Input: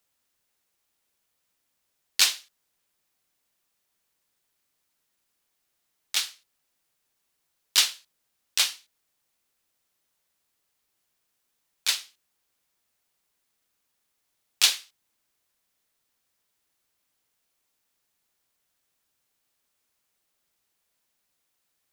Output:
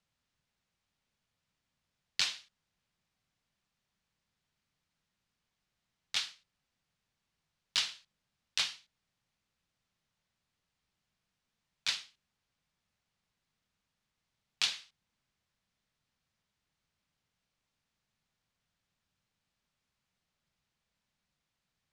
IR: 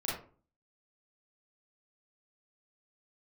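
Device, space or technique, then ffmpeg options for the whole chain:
jukebox: -af "lowpass=5100,lowshelf=f=240:t=q:w=1.5:g=8.5,acompressor=threshold=0.0631:ratio=4,volume=0.668"

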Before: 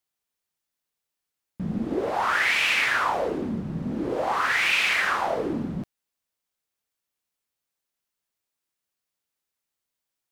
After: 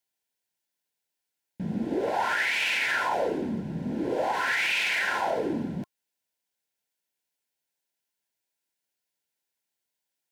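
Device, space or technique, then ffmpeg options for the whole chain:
PA system with an anti-feedback notch: -af "highpass=f=150:p=1,asuperstop=centerf=1200:order=20:qfactor=4.5,alimiter=limit=0.126:level=0:latency=1:release=33"

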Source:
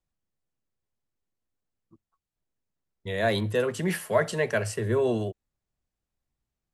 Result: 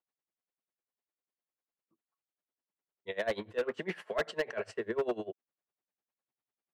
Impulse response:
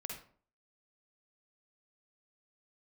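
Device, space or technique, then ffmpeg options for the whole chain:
helicopter radio: -af "highpass=340,lowpass=2900,aeval=exprs='val(0)*pow(10,-22*(0.5-0.5*cos(2*PI*10*n/s))/20)':c=same,asoftclip=type=hard:threshold=0.0501,volume=1.12"

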